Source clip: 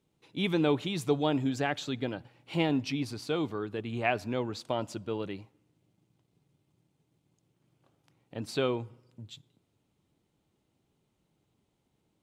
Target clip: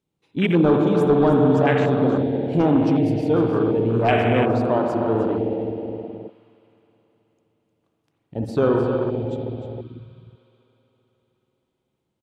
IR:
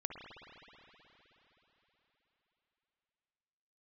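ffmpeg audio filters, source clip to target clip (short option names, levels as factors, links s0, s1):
-filter_complex "[0:a]aecho=1:1:306:0.299[s0];[1:a]atrim=start_sample=2205[s1];[s0][s1]afir=irnorm=-1:irlink=0,aeval=exprs='0.211*sin(PI/2*2*val(0)/0.211)':c=same,afwtdn=0.0447,volume=1.58"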